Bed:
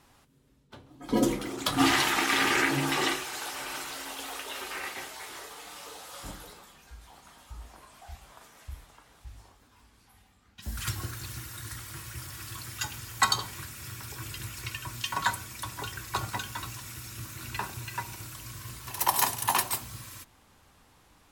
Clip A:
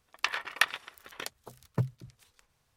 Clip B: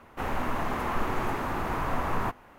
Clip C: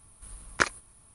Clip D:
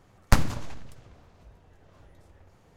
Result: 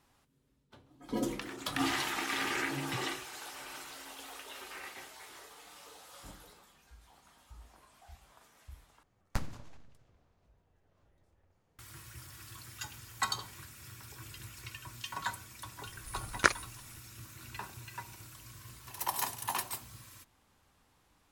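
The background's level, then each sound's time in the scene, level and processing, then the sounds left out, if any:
bed −9 dB
0:01.15: mix in A −14.5 dB
0:09.03: overwrite with D −15.5 dB
0:15.84: mix in C −1 dB
not used: B

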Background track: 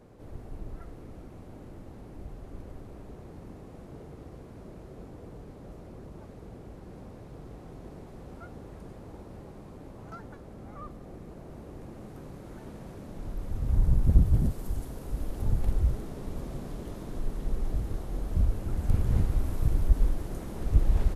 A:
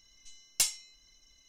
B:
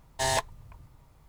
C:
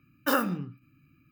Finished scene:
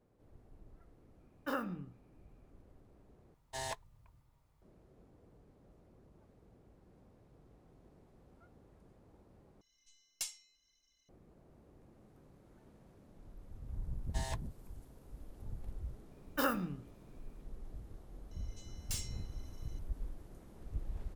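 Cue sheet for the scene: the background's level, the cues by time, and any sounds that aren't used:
background track −18 dB
0:01.20: mix in C −11 dB + high-shelf EQ 4,000 Hz −12 dB
0:03.34: overwrite with B −14 dB
0:09.61: overwrite with A −13 dB + low-shelf EQ 150 Hz −4 dB
0:13.95: mix in B −17 dB
0:16.11: mix in C −7.5 dB
0:18.31: mix in A −4.5 dB + soft clipping −32.5 dBFS

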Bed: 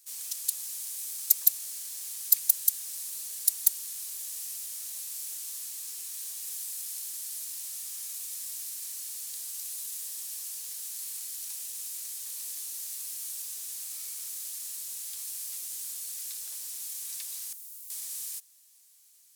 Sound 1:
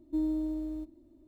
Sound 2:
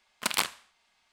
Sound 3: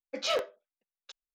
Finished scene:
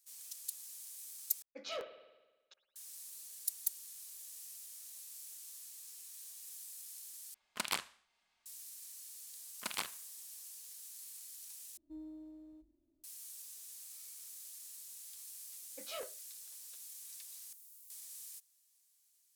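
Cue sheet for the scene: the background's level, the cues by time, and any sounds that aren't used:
bed −12.5 dB
0:01.42: overwrite with 3 −13 dB + spring reverb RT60 1.2 s, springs 56 ms, chirp 60 ms, DRR 10.5 dB
0:07.34: overwrite with 2 −9 dB
0:09.40: mix in 2 −12 dB
0:11.77: overwrite with 1 −18 dB + mains-hum notches 50/100/150/200/250/300/350 Hz
0:15.64: mix in 3 −15.5 dB

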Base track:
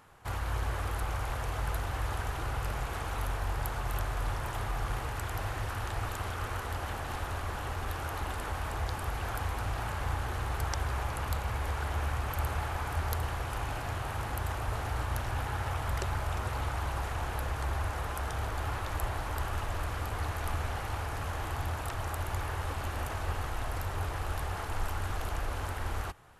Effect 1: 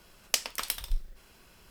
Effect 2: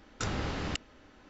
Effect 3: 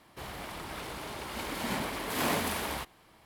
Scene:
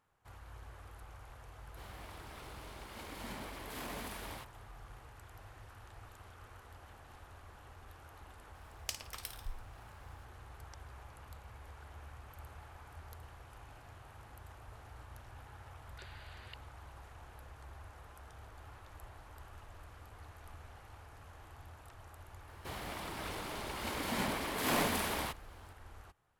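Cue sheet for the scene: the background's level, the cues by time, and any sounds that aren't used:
base track −19 dB
0:01.60: mix in 3 −11.5 dB + brickwall limiter −22.5 dBFS
0:08.55: mix in 1 −13 dB + flutter between parallel walls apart 9.3 metres, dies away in 0.32 s
0:15.78: mix in 2 −14.5 dB + brick-wall band-pass 1,400–4,900 Hz
0:22.48: mix in 3 −2 dB

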